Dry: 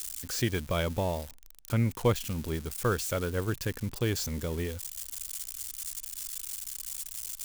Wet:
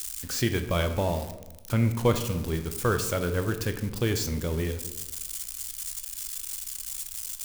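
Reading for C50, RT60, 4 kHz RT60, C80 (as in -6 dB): 9.5 dB, 1.0 s, 0.55 s, 12.0 dB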